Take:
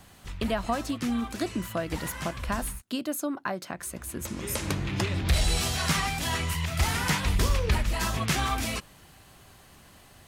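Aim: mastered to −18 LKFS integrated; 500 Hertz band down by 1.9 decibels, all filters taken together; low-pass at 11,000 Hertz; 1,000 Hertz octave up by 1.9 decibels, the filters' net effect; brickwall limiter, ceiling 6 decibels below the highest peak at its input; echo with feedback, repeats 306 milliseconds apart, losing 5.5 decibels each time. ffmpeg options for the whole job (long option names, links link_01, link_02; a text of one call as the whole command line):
ffmpeg -i in.wav -af "lowpass=11000,equalizer=frequency=500:width_type=o:gain=-4,equalizer=frequency=1000:width_type=o:gain=3.5,alimiter=limit=-20.5dB:level=0:latency=1,aecho=1:1:306|612|918|1224|1530|1836|2142:0.531|0.281|0.149|0.079|0.0419|0.0222|0.0118,volume=12dB" out.wav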